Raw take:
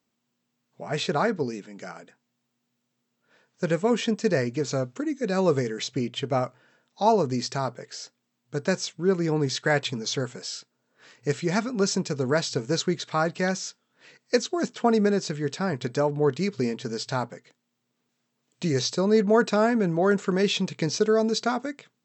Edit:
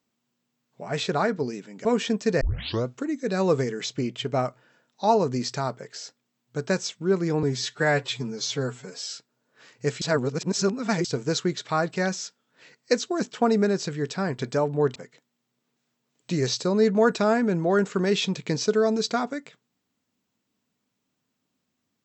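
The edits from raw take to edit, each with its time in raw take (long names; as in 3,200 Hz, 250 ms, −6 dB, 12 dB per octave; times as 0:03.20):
0:01.85–0:03.83: remove
0:04.39: tape start 0.44 s
0:09.41–0:10.52: time-stretch 1.5×
0:11.44–0:12.47: reverse
0:16.38–0:17.28: remove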